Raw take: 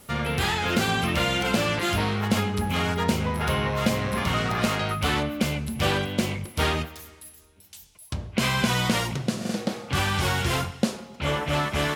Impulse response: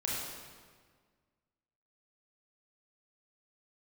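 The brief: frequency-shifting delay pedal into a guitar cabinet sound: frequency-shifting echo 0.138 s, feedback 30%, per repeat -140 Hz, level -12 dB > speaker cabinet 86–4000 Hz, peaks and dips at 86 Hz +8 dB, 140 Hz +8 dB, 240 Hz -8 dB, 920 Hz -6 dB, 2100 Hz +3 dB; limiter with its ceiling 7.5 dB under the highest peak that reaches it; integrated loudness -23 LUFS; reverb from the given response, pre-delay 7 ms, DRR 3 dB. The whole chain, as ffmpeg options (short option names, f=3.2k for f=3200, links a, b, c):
-filter_complex "[0:a]alimiter=limit=-16.5dB:level=0:latency=1,asplit=2[a][b];[1:a]atrim=start_sample=2205,adelay=7[c];[b][c]afir=irnorm=-1:irlink=0,volume=-8dB[d];[a][d]amix=inputs=2:normalize=0,asplit=4[e][f][g][h];[f]adelay=138,afreqshift=-140,volume=-12dB[i];[g]adelay=276,afreqshift=-280,volume=-22.5dB[j];[h]adelay=414,afreqshift=-420,volume=-32.9dB[k];[e][i][j][k]amix=inputs=4:normalize=0,highpass=86,equalizer=f=86:t=q:w=4:g=8,equalizer=f=140:t=q:w=4:g=8,equalizer=f=240:t=q:w=4:g=-8,equalizer=f=920:t=q:w=4:g=-6,equalizer=f=2.1k:t=q:w=4:g=3,lowpass=f=4k:w=0.5412,lowpass=f=4k:w=1.3066,volume=1dB"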